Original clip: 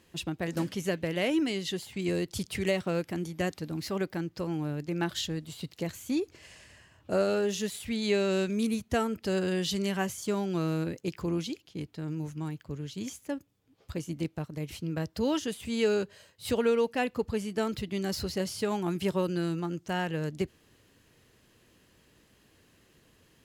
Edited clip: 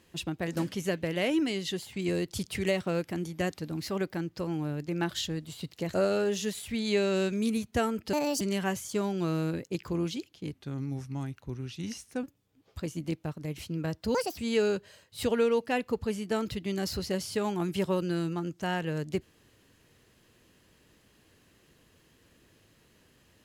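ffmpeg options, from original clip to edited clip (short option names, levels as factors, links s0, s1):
-filter_complex "[0:a]asplit=8[s0][s1][s2][s3][s4][s5][s6][s7];[s0]atrim=end=5.942[s8];[s1]atrim=start=7.108:end=9.304[s9];[s2]atrim=start=9.3:end=9.74,asetpts=PTS-STARTPTS,asetrate=69678,aresample=44100,atrim=end_sample=12281,asetpts=PTS-STARTPTS[s10];[s3]atrim=start=9.736:end=11.854[s11];[s4]atrim=start=11.85:end=13.36,asetpts=PTS-STARTPTS,asetrate=38808,aresample=44100[s12];[s5]atrim=start=13.356:end=15.274[s13];[s6]atrim=start=15.27:end=15.64,asetpts=PTS-STARTPTS,asetrate=70560,aresample=44100,atrim=end_sample=10198,asetpts=PTS-STARTPTS[s14];[s7]atrim=start=15.636[s15];[s8][s9]acrossfade=d=0.004:c1=hsin:c2=hsin[s16];[s16][s10]acrossfade=d=0.004:c1=hsin:c2=hsin[s17];[s17][s11]acrossfade=d=0.004:c1=hsin:c2=hsin[s18];[s18][s12]acrossfade=d=0.004:c1=hsin:c2=hsin[s19];[s19][s13]acrossfade=d=0.004:c1=hsin:c2=hsin[s20];[s20][s14]acrossfade=d=0.004:c1=hsin:c2=hsin[s21];[s21][s15]acrossfade=d=0.004:c1=hsin:c2=hsin"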